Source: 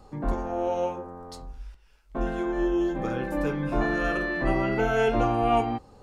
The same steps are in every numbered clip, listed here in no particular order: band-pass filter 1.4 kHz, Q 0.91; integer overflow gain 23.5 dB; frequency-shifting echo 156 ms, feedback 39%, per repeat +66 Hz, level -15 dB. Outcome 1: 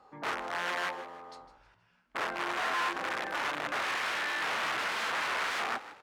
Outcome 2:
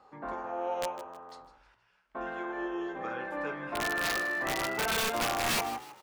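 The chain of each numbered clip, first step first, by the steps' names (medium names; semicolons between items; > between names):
integer overflow > frequency-shifting echo > band-pass filter; band-pass filter > integer overflow > frequency-shifting echo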